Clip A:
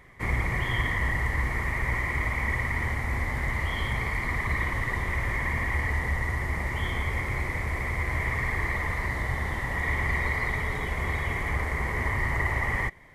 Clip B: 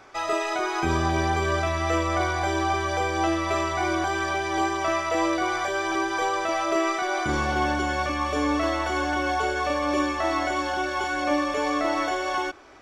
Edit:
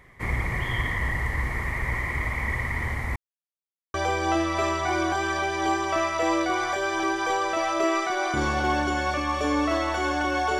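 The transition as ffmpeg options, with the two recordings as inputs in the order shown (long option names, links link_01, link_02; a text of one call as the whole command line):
ffmpeg -i cue0.wav -i cue1.wav -filter_complex "[0:a]apad=whole_dur=10.59,atrim=end=10.59,asplit=2[link_01][link_02];[link_01]atrim=end=3.16,asetpts=PTS-STARTPTS,afade=type=out:start_time=3.156:duration=0.004:curve=hsin[link_03];[link_02]atrim=start=3.16:end=3.94,asetpts=PTS-STARTPTS,volume=0[link_04];[1:a]atrim=start=2.86:end=9.51,asetpts=PTS-STARTPTS,afade=type=in:duration=0.004:curve=hsin[link_05];[link_03][link_04][link_05]concat=n=3:v=0:a=1" out.wav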